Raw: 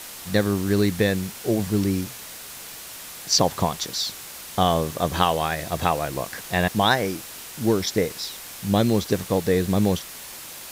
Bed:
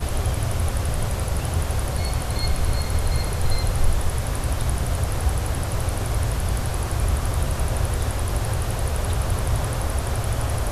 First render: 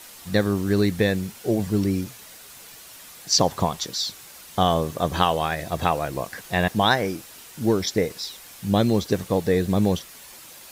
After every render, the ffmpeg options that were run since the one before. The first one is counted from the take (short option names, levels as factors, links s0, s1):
-af "afftdn=nr=7:nf=-39"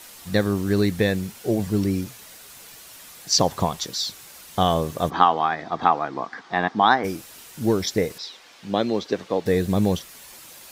-filter_complex "[0:a]asplit=3[s0][s1][s2];[s0]afade=t=out:st=5.09:d=0.02[s3];[s1]highpass=240,equalizer=f=260:t=q:w=4:g=6,equalizer=f=560:t=q:w=4:g=-9,equalizer=f=810:t=q:w=4:g=7,equalizer=f=1200:t=q:w=4:g=7,equalizer=f=2700:t=q:w=4:g=-9,equalizer=f=4100:t=q:w=4:g=-4,lowpass=f=4500:w=0.5412,lowpass=f=4500:w=1.3066,afade=t=in:st=5.09:d=0.02,afade=t=out:st=7.03:d=0.02[s4];[s2]afade=t=in:st=7.03:d=0.02[s5];[s3][s4][s5]amix=inputs=3:normalize=0,asettb=1/sr,asplit=3[s6][s7][s8];[s6]atrim=end=8.184[s9];[s7]atrim=start=8.18:end=9.46,asetpts=PTS-STARTPTS,afade=t=in:d=0.004:c=qsin,afade=t=out:st=1.276:d=0.004:c=qsin,acrossover=split=230 5700:gain=0.141 1 0.0794[s10][s11][s12];[s10][s11][s12]amix=inputs=3:normalize=0[s13];[s8]atrim=start=9.456[s14];[s9][s13]acrossfade=d=0.004:c1=hsin:c2=qsin[s15];[s15][s14]acrossfade=d=0.004:c1=qsin:c2=hsin"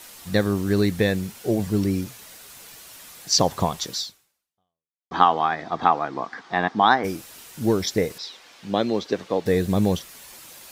-filter_complex "[0:a]asplit=2[s0][s1];[s0]atrim=end=5.11,asetpts=PTS-STARTPTS,afade=t=out:st=3.98:d=1.13:c=exp[s2];[s1]atrim=start=5.11,asetpts=PTS-STARTPTS,afade=t=in:d=0.004:c=hsin[s3];[s2][s3]concat=n=2:v=0:a=1"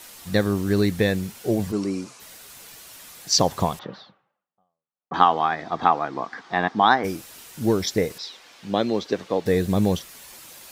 -filter_complex "[0:a]asplit=3[s0][s1][s2];[s0]afade=t=out:st=1.71:d=0.02[s3];[s1]highpass=240,equalizer=f=1100:t=q:w=4:g=6,equalizer=f=1800:t=q:w=4:g=-6,equalizer=f=3400:t=q:w=4:g=-7,lowpass=f=8700:w=0.5412,lowpass=f=8700:w=1.3066,afade=t=in:st=1.71:d=0.02,afade=t=out:st=2.19:d=0.02[s4];[s2]afade=t=in:st=2.19:d=0.02[s5];[s3][s4][s5]amix=inputs=3:normalize=0,asettb=1/sr,asplit=3[s6][s7][s8];[s6]atrim=end=3.794[s9];[s7]atrim=start=3.79:end=5.14,asetpts=PTS-STARTPTS,afade=t=in:d=0.004:c=qsin,afade=t=out:st=1.346:d=0.004:c=qsin,highpass=130,equalizer=f=140:t=q:w=4:g=6,equalizer=f=200:t=q:w=4:g=7,equalizer=f=550:t=q:w=4:g=8,equalizer=f=800:t=q:w=4:g=8,equalizer=f=1200:t=q:w=4:g=7,equalizer=f=2300:t=q:w=4:g=-7,lowpass=f=2500:w=0.5412,lowpass=f=2500:w=1.3066[s10];[s8]atrim=start=5.136[s11];[s9][s10]acrossfade=d=0.004:c1=hsin:c2=qsin[s12];[s12][s11]acrossfade=d=0.004:c1=qsin:c2=hsin"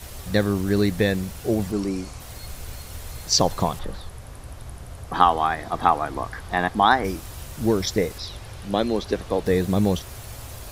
-filter_complex "[1:a]volume=0.178[s0];[0:a][s0]amix=inputs=2:normalize=0"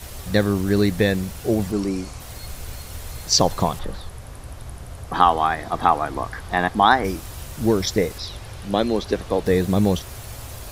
-af "volume=1.26,alimiter=limit=0.794:level=0:latency=1"